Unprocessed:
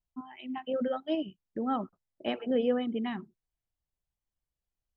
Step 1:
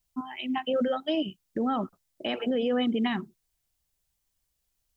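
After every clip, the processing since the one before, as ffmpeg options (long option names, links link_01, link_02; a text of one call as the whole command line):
ffmpeg -i in.wav -af "alimiter=level_in=3dB:limit=-24dB:level=0:latency=1:release=51,volume=-3dB,highshelf=frequency=3000:gain=10.5,volume=7dB" out.wav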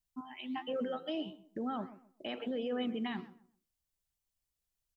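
ffmpeg -i in.wav -filter_complex "[0:a]flanger=delay=5.6:depth=6.5:regen=89:speed=1.5:shape=sinusoidal,asplit=2[link_01][link_02];[link_02]adelay=129,lowpass=frequency=1500:poles=1,volume=-15dB,asplit=2[link_03][link_04];[link_04]adelay=129,lowpass=frequency=1500:poles=1,volume=0.27,asplit=2[link_05][link_06];[link_06]adelay=129,lowpass=frequency=1500:poles=1,volume=0.27[link_07];[link_01][link_03][link_05][link_07]amix=inputs=4:normalize=0,volume=-5dB" out.wav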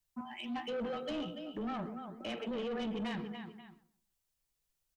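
ffmpeg -i in.wav -af "afreqshift=-17,aecho=1:1:45|288|535:0.188|0.299|0.106,asoftclip=type=tanh:threshold=-36.5dB,volume=3dB" out.wav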